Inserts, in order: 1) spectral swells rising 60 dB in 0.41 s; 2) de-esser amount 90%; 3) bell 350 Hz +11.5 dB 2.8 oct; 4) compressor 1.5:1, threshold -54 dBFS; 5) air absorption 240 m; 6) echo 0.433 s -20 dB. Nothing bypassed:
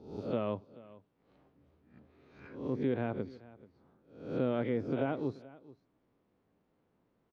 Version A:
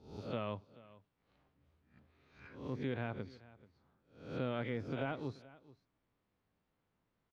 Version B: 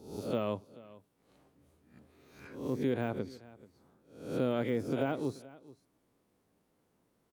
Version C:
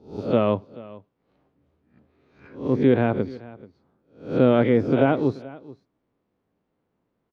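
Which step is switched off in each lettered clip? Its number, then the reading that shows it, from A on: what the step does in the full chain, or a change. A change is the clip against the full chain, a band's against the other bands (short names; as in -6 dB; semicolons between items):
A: 3, 4 kHz band +5.0 dB; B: 5, 4 kHz band +5.0 dB; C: 4, mean gain reduction 11.5 dB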